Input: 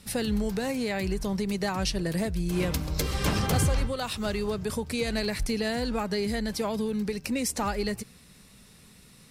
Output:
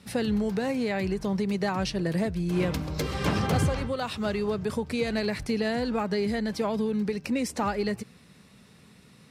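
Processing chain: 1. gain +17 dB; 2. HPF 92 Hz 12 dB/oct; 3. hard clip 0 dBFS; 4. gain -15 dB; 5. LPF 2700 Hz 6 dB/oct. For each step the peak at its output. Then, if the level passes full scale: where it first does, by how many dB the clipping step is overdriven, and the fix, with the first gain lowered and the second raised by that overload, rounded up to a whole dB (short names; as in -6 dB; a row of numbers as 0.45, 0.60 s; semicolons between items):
+2.5, +3.5, 0.0, -15.0, -15.0 dBFS; step 1, 3.5 dB; step 1 +13 dB, step 4 -11 dB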